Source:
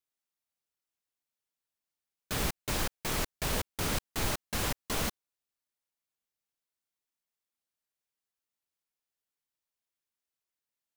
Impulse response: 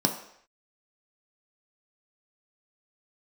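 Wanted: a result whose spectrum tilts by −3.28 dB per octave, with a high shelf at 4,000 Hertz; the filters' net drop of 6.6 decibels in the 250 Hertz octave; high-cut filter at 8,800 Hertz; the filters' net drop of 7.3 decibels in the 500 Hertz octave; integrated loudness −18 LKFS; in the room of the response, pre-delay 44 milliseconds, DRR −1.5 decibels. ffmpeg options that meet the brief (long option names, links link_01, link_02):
-filter_complex "[0:a]lowpass=8800,equalizer=frequency=250:width_type=o:gain=-7.5,equalizer=frequency=500:width_type=o:gain=-7.5,highshelf=frequency=4000:gain=8.5,asplit=2[link_01][link_02];[1:a]atrim=start_sample=2205,adelay=44[link_03];[link_02][link_03]afir=irnorm=-1:irlink=0,volume=-9dB[link_04];[link_01][link_04]amix=inputs=2:normalize=0,volume=10dB"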